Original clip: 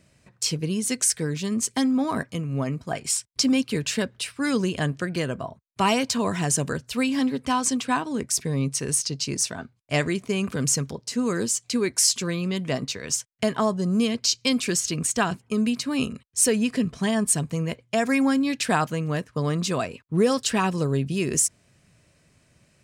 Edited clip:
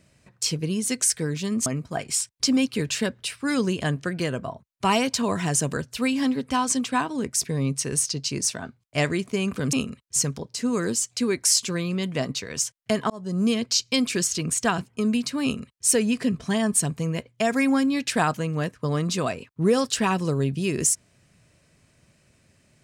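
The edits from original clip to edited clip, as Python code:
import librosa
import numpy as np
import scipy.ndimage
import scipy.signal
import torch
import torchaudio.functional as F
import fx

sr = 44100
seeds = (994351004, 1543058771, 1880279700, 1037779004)

y = fx.edit(x, sr, fx.cut(start_s=1.66, length_s=0.96),
    fx.fade_in_span(start_s=13.63, length_s=0.31),
    fx.duplicate(start_s=15.96, length_s=0.43, to_s=10.69), tone=tone)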